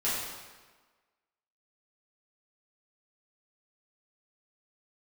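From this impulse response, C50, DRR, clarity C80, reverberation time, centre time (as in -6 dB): -0.5 dB, -10.5 dB, 2.0 dB, 1.4 s, 88 ms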